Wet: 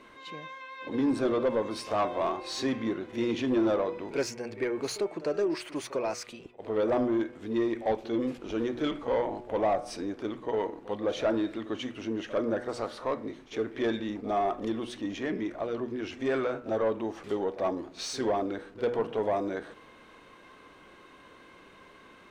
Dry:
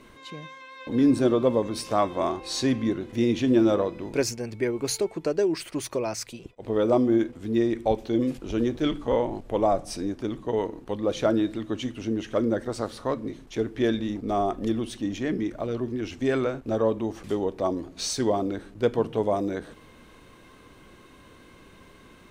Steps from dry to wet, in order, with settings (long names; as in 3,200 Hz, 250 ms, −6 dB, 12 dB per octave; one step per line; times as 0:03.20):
hum removal 121.3 Hz, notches 22
mid-hump overdrive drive 17 dB, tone 2,000 Hz, clips at −9 dBFS
echo ahead of the sound 48 ms −16 dB
level −8 dB